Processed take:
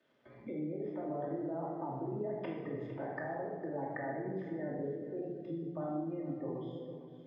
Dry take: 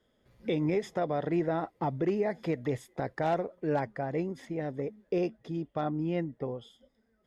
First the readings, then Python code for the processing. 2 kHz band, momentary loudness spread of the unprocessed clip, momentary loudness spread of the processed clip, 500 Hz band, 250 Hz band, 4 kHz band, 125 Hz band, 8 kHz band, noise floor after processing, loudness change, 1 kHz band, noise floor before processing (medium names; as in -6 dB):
-6.5 dB, 8 LU, 3 LU, -7.5 dB, -6.5 dB, under -15 dB, -8.5 dB, no reading, -56 dBFS, -7.5 dB, -8.0 dB, -73 dBFS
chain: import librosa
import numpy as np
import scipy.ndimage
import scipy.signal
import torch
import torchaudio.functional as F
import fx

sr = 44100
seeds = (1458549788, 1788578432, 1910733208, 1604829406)

p1 = fx.spec_gate(x, sr, threshold_db=-25, keep='strong')
p2 = fx.notch(p1, sr, hz=1400.0, q=14.0)
p3 = fx.env_lowpass_down(p2, sr, base_hz=830.0, full_db=-26.0)
p4 = fx.low_shelf(p3, sr, hz=220.0, db=-7.5)
p5 = fx.level_steps(p4, sr, step_db=23)
p6 = fx.dmg_crackle(p5, sr, seeds[0], per_s=490.0, level_db=-76.0)
p7 = fx.bandpass_edges(p6, sr, low_hz=150.0, high_hz=3100.0)
p8 = p7 + fx.echo_single(p7, sr, ms=454, db=-15.5, dry=0)
p9 = fx.room_shoebox(p8, sr, seeds[1], volume_m3=870.0, walls='mixed', distance_m=2.6)
p10 = fx.band_squash(p9, sr, depth_pct=40)
y = p10 * librosa.db_to_amplitude(2.5)